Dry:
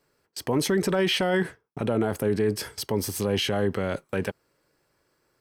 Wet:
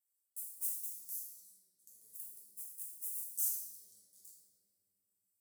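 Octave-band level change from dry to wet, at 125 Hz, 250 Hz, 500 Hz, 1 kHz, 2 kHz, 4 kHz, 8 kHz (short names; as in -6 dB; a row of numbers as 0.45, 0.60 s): under -40 dB, under -40 dB, under -40 dB, under -40 dB, under -40 dB, -33.0 dB, -5.5 dB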